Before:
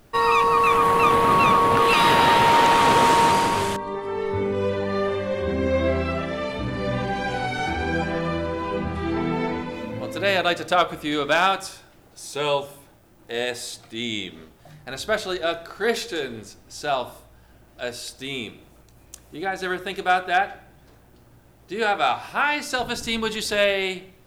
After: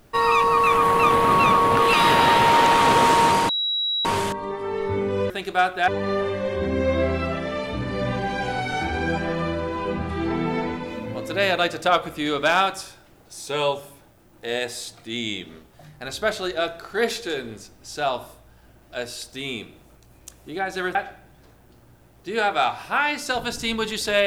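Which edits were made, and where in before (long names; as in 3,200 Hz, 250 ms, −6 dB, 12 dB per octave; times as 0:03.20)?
0:03.49: insert tone 3,880 Hz −21 dBFS 0.56 s
0:19.81–0:20.39: move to 0:04.74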